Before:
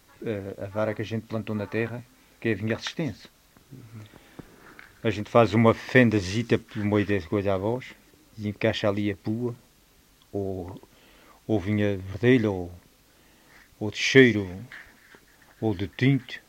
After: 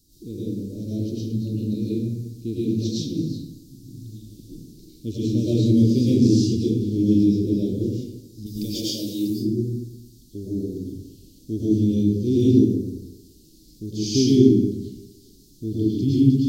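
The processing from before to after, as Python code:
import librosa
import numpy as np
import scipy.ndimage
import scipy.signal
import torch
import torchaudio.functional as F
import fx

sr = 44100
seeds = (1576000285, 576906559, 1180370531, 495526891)

y = fx.riaa(x, sr, side='recording', at=(8.46, 9.3))
y = scipy.signal.sosfilt(scipy.signal.ellip(3, 1.0, 50, [330.0, 4400.0], 'bandstop', fs=sr, output='sos'), y)
y = fx.rev_freeverb(y, sr, rt60_s=1.0, hf_ratio=0.6, predelay_ms=70, drr_db=-9.0)
y = y * 10.0 ** (-1.0 / 20.0)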